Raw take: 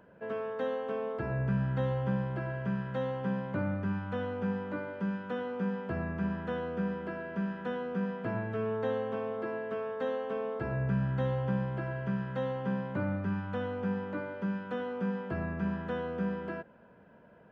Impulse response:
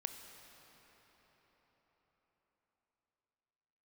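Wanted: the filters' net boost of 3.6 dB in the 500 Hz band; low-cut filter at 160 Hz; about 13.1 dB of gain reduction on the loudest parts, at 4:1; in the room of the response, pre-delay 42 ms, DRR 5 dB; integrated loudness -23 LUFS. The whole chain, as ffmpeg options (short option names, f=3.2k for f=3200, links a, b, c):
-filter_complex "[0:a]highpass=160,equalizer=f=500:t=o:g=4,acompressor=threshold=-42dB:ratio=4,asplit=2[a][b];[1:a]atrim=start_sample=2205,adelay=42[c];[b][c]afir=irnorm=-1:irlink=0,volume=-3.5dB[d];[a][d]amix=inputs=2:normalize=0,volume=19.5dB"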